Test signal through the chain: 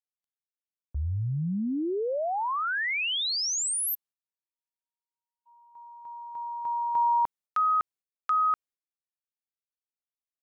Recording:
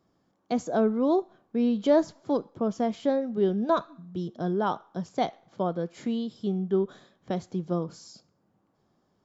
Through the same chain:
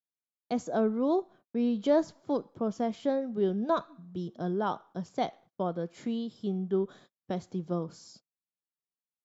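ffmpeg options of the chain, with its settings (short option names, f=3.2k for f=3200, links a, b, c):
-af "agate=range=-39dB:threshold=-50dB:ratio=16:detection=peak,volume=-3.5dB"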